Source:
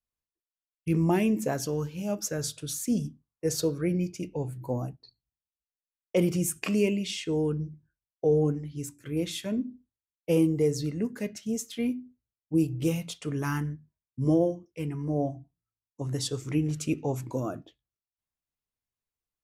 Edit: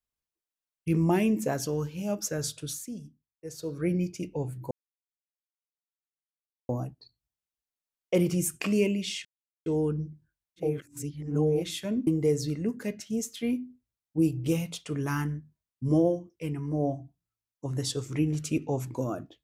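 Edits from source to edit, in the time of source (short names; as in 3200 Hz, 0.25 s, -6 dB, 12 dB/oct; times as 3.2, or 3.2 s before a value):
2.66–3.86 dip -12.5 dB, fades 0.25 s
4.71 insert silence 1.98 s
7.27 insert silence 0.41 s
8.29–9.18 reverse, crossfade 0.24 s
9.68–10.43 cut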